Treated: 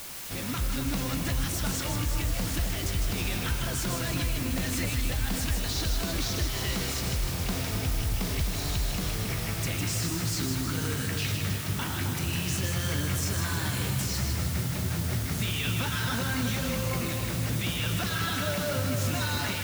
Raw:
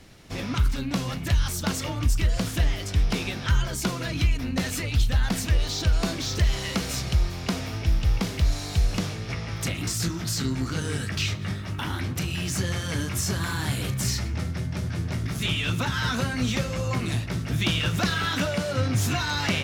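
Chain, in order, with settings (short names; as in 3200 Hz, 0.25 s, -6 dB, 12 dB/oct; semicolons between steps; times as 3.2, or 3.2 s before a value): limiter -22 dBFS, peak gain reduction 10.5 dB; AGC gain up to 3.5 dB; requantised 6-bit, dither triangular; on a send: split-band echo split 1100 Hz, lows 0.265 s, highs 0.156 s, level -5 dB; on the sum: gain -4.5 dB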